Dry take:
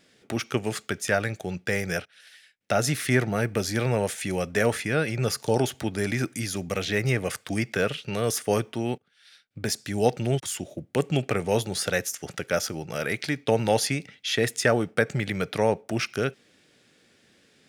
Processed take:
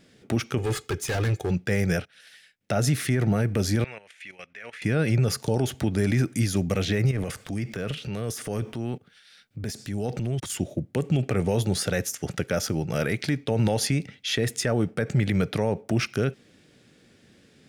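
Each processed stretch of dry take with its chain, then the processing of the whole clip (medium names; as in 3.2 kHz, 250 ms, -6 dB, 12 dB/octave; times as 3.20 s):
0.58–1.51 s: comb 2.4 ms, depth 77% + overload inside the chain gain 28 dB
3.84–4.82 s: band-pass filter 2.3 kHz, Q 2.2 + level held to a coarse grid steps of 14 dB
7.11–10.50 s: compression 2:1, threshold -39 dBFS + transient shaper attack -3 dB, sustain +8 dB
whole clip: bass shelf 330 Hz +11 dB; peak limiter -14 dBFS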